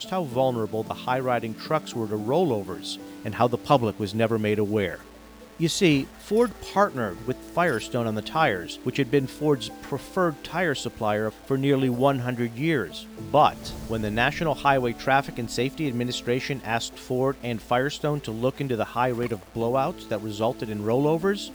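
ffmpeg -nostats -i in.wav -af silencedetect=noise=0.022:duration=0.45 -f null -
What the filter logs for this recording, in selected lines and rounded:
silence_start: 4.96
silence_end: 5.60 | silence_duration: 0.64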